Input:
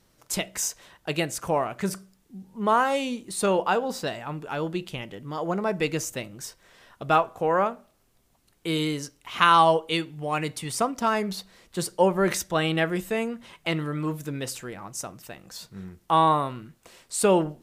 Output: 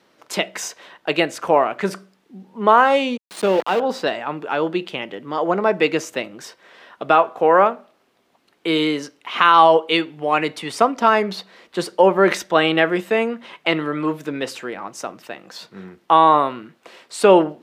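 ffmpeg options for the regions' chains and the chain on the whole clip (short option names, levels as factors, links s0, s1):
-filter_complex "[0:a]asettb=1/sr,asplit=3[s0][s1][s2];[s0]atrim=end=3.174[s3];[s1]atrim=start=3.17:end=3.8,asetpts=PTS-STARTPTS,afade=t=in:d=0.004:c=qsin,afade=t=out:st=0.626:d=0.004:c=qsin,equalizer=f=1400:w=0.57:g=-9,aeval=exprs='val(0)*gte(abs(val(0)),0.0266)':c=same[s4];[s2]atrim=start=3.796[s5];[s3][s4]acrossfade=d=0.004:c1=hsin:c2=qsin[s6];[s6][s5]acrossfade=d=0.004:c1=qsin:c2=hsin,highpass=63,acrossover=split=220 4300:gain=0.0708 1 0.158[s7][s8][s9];[s7][s8][s9]amix=inputs=3:normalize=0,alimiter=level_in=3.35:limit=0.891:release=50:level=0:latency=1,volume=0.891"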